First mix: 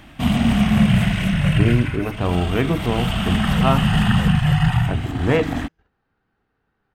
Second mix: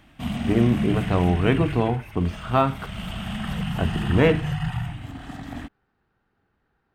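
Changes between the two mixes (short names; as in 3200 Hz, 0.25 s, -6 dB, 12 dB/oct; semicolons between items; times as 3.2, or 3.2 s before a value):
speech: entry -1.10 s; background -10.0 dB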